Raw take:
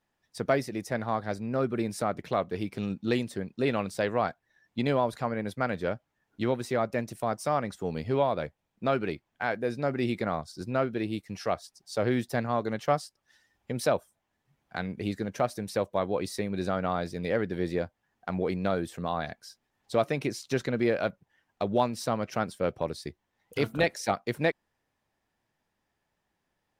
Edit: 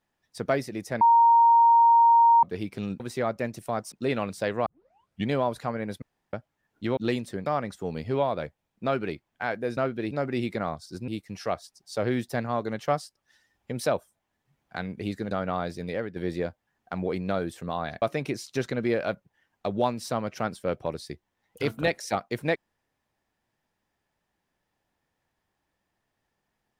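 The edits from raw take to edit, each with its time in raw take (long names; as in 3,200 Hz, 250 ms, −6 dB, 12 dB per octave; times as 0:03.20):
0:01.01–0:02.43: beep over 930 Hz −14 dBFS
0:03.00–0:03.49: swap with 0:06.54–0:07.46
0:04.23: tape start 0.65 s
0:05.59–0:05.90: fill with room tone
0:10.74–0:11.08: move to 0:09.77
0:15.31–0:16.67: remove
0:17.19–0:17.52: fade out, to −9.5 dB
0:19.38–0:19.98: remove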